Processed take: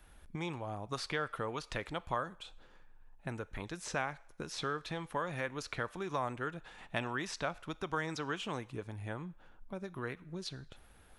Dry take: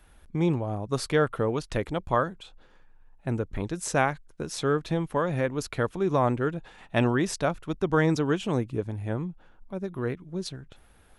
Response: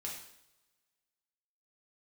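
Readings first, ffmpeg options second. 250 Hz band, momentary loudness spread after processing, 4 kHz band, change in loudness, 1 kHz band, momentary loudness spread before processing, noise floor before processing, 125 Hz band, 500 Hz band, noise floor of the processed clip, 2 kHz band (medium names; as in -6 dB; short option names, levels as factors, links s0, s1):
-14.5 dB, 10 LU, -4.5 dB, -11.5 dB, -8.5 dB, 11 LU, -57 dBFS, -14.0 dB, -13.5 dB, -60 dBFS, -6.5 dB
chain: -filter_complex "[0:a]acrossover=split=800|5400[s0][s1][s2];[s0]acompressor=threshold=0.0126:ratio=4[s3];[s1]acompressor=threshold=0.0251:ratio=4[s4];[s2]acompressor=threshold=0.00178:ratio=4[s5];[s3][s4][s5]amix=inputs=3:normalize=0,asplit=2[s6][s7];[s7]highpass=520[s8];[1:a]atrim=start_sample=2205[s9];[s8][s9]afir=irnorm=-1:irlink=0,volume=0.188[s10];[s6][s10]amix=inputs=2:normalize=0,volume=0.708"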